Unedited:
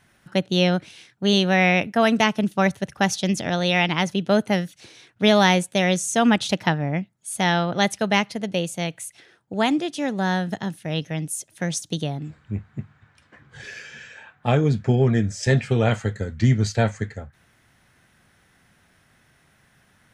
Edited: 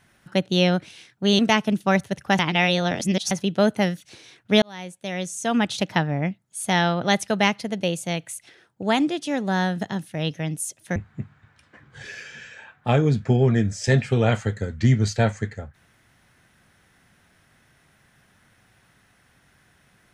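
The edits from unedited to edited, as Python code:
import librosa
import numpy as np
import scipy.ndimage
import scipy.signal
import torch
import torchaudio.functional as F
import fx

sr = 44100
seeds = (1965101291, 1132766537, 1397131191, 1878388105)

y = fx.edit(x, sr, fx.cut(start_s=1.39, length_s=0.71),
    fx.reverse_span(start_s=3.1, length_s=0.92),
    fx.fade_in_span(start_s=5.33, length_s=1.49),
    fx.cut(start_s=11.67, length_s=0.88), tone=tone)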